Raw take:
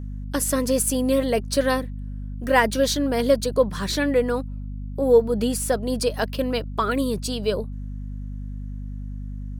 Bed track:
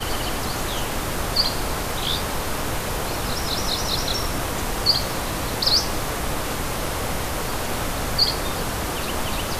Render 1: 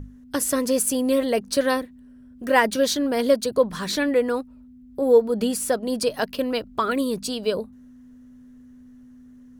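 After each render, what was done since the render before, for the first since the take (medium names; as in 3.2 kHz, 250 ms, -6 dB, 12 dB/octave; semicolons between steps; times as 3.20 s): hum notches 50/100/150/200 Hz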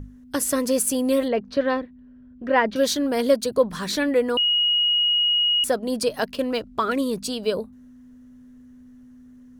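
1.28–2.76 s: distance through air 270 m; 4.37–5.64 s: bleep 2.89 kHz -17 dBFS; 6.30–7.13 s: decimation joined by straight lines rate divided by 2×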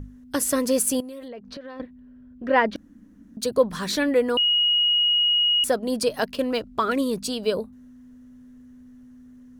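1.00–1.80 s: compression 16:1, threshold -34 dBFS; 2.76–3.37 s: room tone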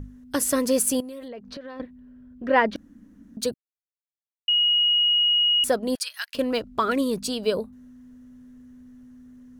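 3.54–4.48 s: mute; 5.95–6.35 s: inverse Chebyshev high-pass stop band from 330 Hz, stop band 70 dB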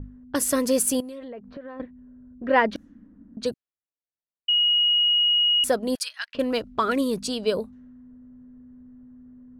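level-controlled noise filter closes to 870 Hz, open at -23 dBFS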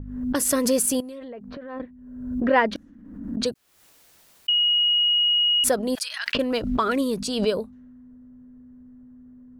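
swell ahead of each attack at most 54 dB/s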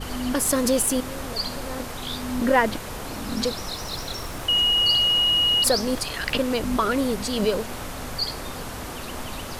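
add bed track -8 dB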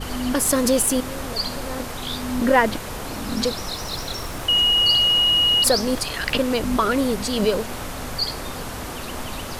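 trim +2.5 dB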